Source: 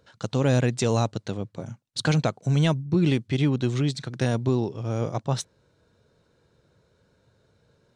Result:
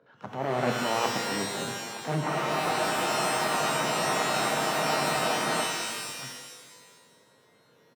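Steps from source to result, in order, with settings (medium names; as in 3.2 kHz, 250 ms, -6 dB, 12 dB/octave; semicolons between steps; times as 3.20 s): self-modulated delay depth 0.9 ms; low-pass 5.2 kHz; three-band isolator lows -21 dB, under 150 Hz, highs -17 dB, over 2.2 kHz; transient shaper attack -10 dB, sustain +3 dB; reverse; compression, threshold -27 dBFS, peak gain reduction 9 dB; reverse; high-pass 110 Hz; delay 910 ms -16.5 dB; spectral freeze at 2.25 s, 3.38 s; pitch-shifted reverb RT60 1.4 s, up +12 st, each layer -2 dB, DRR 3.5 dB; trim +2.5 dB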